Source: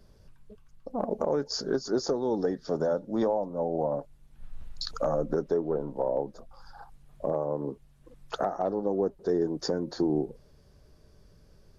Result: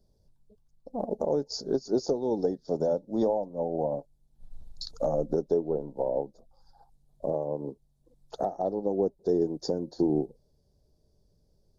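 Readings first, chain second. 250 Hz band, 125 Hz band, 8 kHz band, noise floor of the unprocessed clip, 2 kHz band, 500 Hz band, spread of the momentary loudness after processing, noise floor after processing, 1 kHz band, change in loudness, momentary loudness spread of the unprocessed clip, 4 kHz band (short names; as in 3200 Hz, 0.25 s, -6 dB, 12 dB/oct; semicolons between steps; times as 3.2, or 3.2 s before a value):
0.0 dB, -0.5 dB, n/a, -58 dBFS, under -10 dB, 0.0 dB, 10 LU, -68 dBFS, -2.0 dB, 0.0 dB, 9 LU, -4.0 dB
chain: band shelf 1800 Hz -15 dB; upward expander 1.5:1, over -47 dBFS; gain +2 dB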